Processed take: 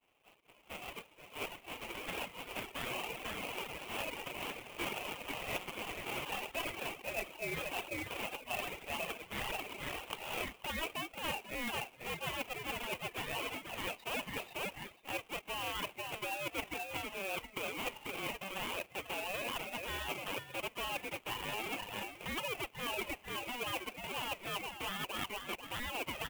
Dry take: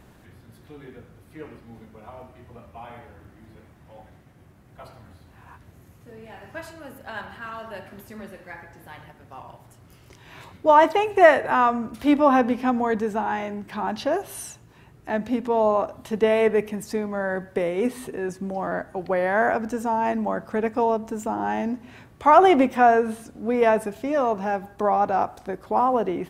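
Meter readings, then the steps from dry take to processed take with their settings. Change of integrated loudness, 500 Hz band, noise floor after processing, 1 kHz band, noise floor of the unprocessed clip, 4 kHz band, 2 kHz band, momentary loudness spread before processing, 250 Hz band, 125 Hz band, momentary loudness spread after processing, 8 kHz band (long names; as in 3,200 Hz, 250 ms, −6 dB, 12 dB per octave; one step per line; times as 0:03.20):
−17.5 dB, −21.0 dB, −62 dBFS, −19.5 dB, −52 dBFS, +2.0 dB, −9.0 dB, 22 LU, −21.5 dB, −11.0 dB, 4 LU, −2.5 dB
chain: each half-wave held at its own peak
camcorder AGC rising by 5.6 dB per second
flat-topped band-pass 1,700 Hz, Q 1.8
high-frequency loss of the air 120 metres
echo with shifted repeats 491 ms, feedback 33%, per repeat −62 Hz, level −9 dB
ring modulation 970 Hz
downward expander −54 dBFS
reverb reduction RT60 0.88 s
reversed playback
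downward compressor 10 to 1, threshold −42 dBFS, peak gain reduction 23.5 dB
reversed playback
converter with an unsteady clock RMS 0.026 ms
level +6 dB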